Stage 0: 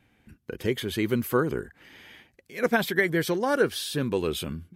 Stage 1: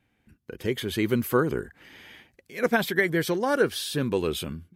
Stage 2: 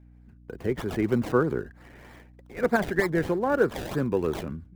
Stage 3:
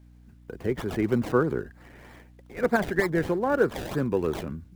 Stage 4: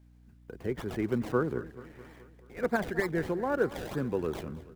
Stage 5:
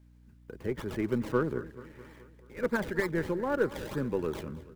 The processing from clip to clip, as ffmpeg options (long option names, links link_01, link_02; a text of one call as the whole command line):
ffmpeg -i in.wav -af "dynaudnorm=framelen=260:gausssize=5:maxgain=9dB,volume=-6.5dB" out.wav
ffmpeg -i in.wav -filter_complex "[0:a]acrossover=split=270|2100[link_01][link_02][link_03];[link_03]acrusher=samples=28:mix=1:aa=0.000001:lfo=1:lforange=28:lforate=3.2[link_04];[link_01][link_02][link_04]amix=inputs=3:normalize=0,aeval=exprs='val(0)+0.00282*(sin(2*PI*60*n/s)+sin(2*PI*2*60*n/s)/2+sin(2*PI*3*60*n/s)/3+sin(2*PI*4*60*n/s)/4+sin(2*PI*5*60*n/s)/5)':channel_layout=same" out.wav
ffmpeg -i in.wav -af "acrusher=bits=11:mix=0:aa=0.000001" out.wav
ffmpeg -i in.wav -af "aecho=1:1:216|432|648|864|1080:0.126|0.0755|0.0453|0.0272|0.0163,volume=-5.5dB" out.wav
ffmpeg -i in.wav -af "aeval=exprs='0.2*(cos(1*acos(clip(val(0)/0.2,-1,1)))-cos(1*PI/2))+0.00447*(cos(8*acos(clip(val(0)/0.2,-1,1)))-cos(8*PI/2))':channel_layout=same,asuperstop=centerf=720:order=4:qfactor=5.5" out.wav